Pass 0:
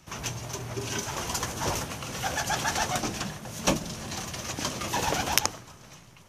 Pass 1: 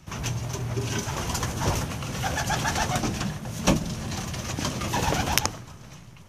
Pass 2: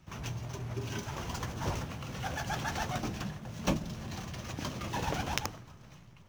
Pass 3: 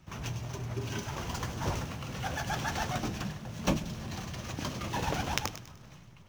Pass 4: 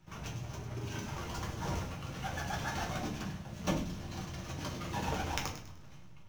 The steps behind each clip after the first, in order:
bass and treble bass +7 dB, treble −2 dB; level +1.5 dB
running median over 5 samples; level −8.5 dB
delay with a high-pass on its return 100 ms, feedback 38%, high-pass 2,200 Hz, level −9 dB; level +1.5 dB
rectangular room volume 30 cubic metres, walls mixed, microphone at 0.49 metres; level −6.5 dB

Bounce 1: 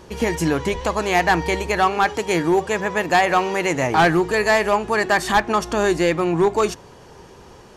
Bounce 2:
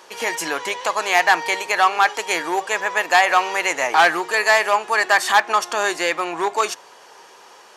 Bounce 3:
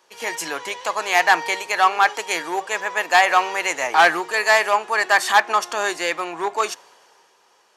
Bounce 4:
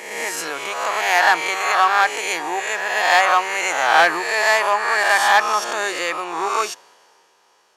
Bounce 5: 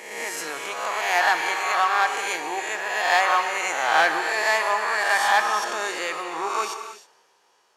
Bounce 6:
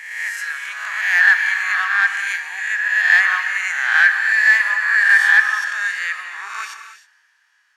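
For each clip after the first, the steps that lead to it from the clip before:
high-pass filter 770 Hz 12 dB per octave; level +4 dB
multiband upward and downward expander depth 40%; level −1 dB
peak hold with a rise ahead of every peak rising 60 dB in 1.11 s; level −2.5 dB
reverb whose tail is shaped and stops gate 340 ms flat, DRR 7 dB; level −5.5 dB
high-pass with resonance 1,700 Hz, resonance Q 6.8; level −3.5 dB

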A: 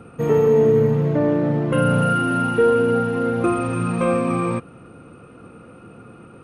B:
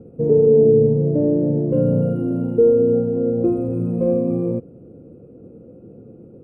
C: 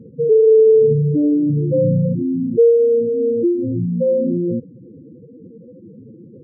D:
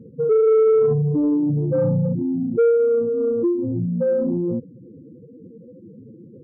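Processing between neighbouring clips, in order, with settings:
drawn EQ curve 120 Hz 0 dB, 510 Hz +3 dB, 1,200 Hz −28 dB
expanding power law on the bin magnitudes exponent 3.5; level +2.5 dB
soft clipping −8 dBFS, distortion −19 dB; level −2.5 dB

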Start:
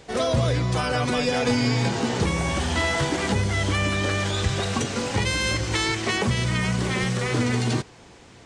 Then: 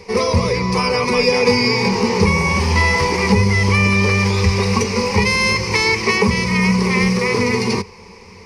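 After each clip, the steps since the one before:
EQ curve with evenly spaced ripples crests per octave 0.85, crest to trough 17 dB
level +4.5 dB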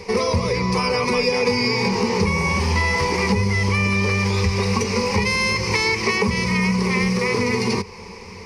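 downward compressor 2.5 to 1, threshold −23 dBFS, peak gain reduction 10 dB
level +3 dB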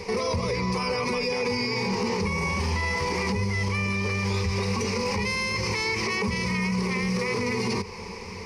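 brickwall limiter −18.5 dBFS, peak gain reduction 10.5 dB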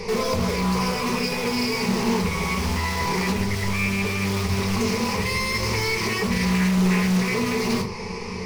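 in parallel at −8 dB: wrap-around overflow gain 24.5 dB
on the sum: rectangular room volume 220 cubic metres, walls furnished, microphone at 1.4 metres
highs frequency-modulated by the lows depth 0.21 ms

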